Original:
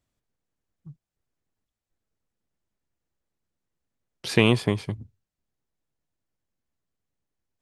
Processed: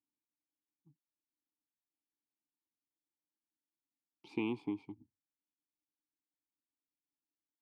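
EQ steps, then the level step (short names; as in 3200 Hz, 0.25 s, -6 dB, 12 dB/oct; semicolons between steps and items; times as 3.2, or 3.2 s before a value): vowel filter u; bell 1900 Hz -14 dB 0.34 oct; -4.0 dB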